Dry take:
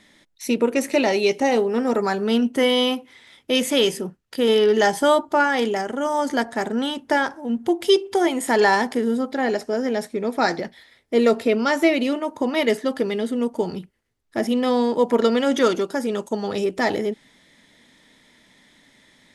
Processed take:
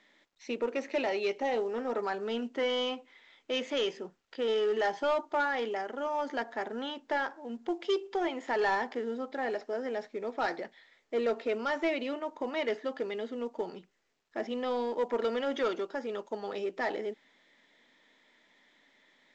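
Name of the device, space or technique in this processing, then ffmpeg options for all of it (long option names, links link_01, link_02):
telephone: -af "highpass=360,lowpass=3400,asoftclip=type=tanh:threshold=-13dB,volume=-8.5dB" -ar 16000 -c:a pcm_mulaw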